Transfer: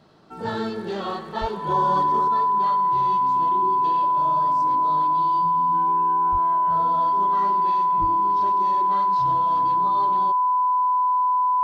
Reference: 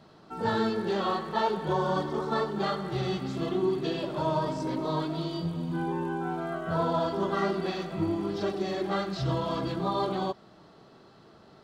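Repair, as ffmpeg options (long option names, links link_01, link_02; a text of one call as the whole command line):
ffmpeg -i in.wav -filter_complex "[0:a]bandreject=frequency=1000:width=30,asplit=3[link_01][link_02][link_03];[link_01]afade=type=out:start_time=1.4:duration=0.02[link_04];[link_02]highpass=frequency=140:width=0.5412,highpass=frequency=140:width=1.3066,afade=type=in:start_time=1.4:duration=0.02,afade=type=out:start_time=1.52:duration=0.02[link_05];[link_03]afade=type=in:start_time=1.52:duration=0.02[link_06];[link_04][link_05][link_06]amix=inputs=3:normalize=0,asplit=3[link_07][link_08][link_09];[link_07]afade=type=out:start_time=6.31:duration=0.02[link_10];[link_08]highpass=frequency=140:width=0.5412,highpass=frequency=140:width=1.3066,afade=type=in:start_time=6.31:duration=0.02,afade=type=out:start_time=6.43:duration=0.02[link_11];[link_09]afade=type=in:start_time=6.43:duration=0.02[link_12];[link_10][link_11][link_12]amix=inputs=3:normalize=0,asplit=3[link_13][link_14][link_15];[link_13]afade=type=out:start_time=8:duration=0.02[link_16];[link_14]highpass=frequency=140:width=0.5412,highpass=frequency=140:width=1.3066,afade=type=in:start_time=8:duration=0.02,afade=type=out:start_time=8.12:duration=0.02[link_17];[link_15]afade=type=in:start_time=8.12:duration=0.02[link_18];[link_16][link_17][link_18]amix=inputs=3:normalize=0,asetnsamples=nb_out_samples=441:pad=0,asendcmd='2.28 volume volume 7dB',volume=0dB" out.wav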